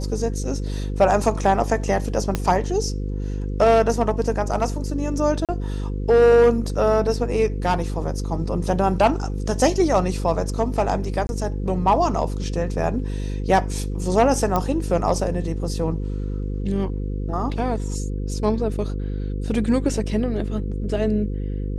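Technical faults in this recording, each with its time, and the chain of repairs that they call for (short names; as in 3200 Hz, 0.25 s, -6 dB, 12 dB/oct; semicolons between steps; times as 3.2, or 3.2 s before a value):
buzz 50 Hz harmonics 10 -26 dBFS
2.35 pop -8 dBFS
5.45–5.49 gap 37 ms
11.27–11.29 gap 21 ms
14.56 pop -9 dBFS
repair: de-click; de-hum 50 Hz, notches 10; interpolate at 5.45, 37 ms; interpolate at 11.27, 21 ms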